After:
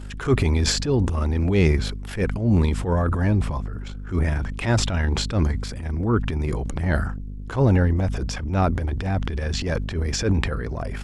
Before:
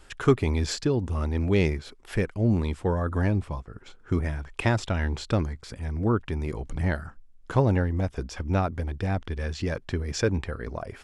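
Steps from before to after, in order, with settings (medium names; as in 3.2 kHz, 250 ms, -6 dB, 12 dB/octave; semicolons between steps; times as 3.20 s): hum 50 Hz, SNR 12 dB; transient shaper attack -11 dB, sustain +8 dB; trim +5 dB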